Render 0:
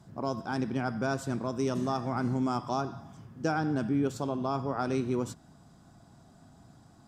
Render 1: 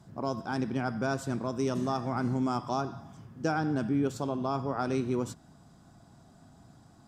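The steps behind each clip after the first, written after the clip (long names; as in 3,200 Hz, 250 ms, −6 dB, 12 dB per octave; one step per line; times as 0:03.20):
no processing that can be heard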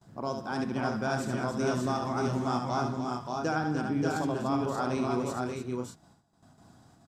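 noise gate with hold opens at −46 dBFS
low-shelf EQ 370 Hz −4 dB
on a send: multi-tap delay 72/202/298/582/614 ms −6/−17/−8.5/−4/−7.5 dB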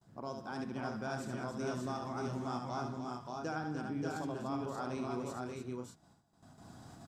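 camcorder AGC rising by 13 dB per second
level −9 dB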